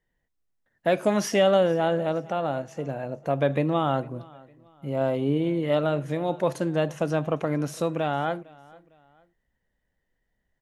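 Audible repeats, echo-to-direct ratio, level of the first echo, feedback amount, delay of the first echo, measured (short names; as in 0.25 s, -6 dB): 2, -23.0 dB, -23.5 dB, 36%, 0.455 s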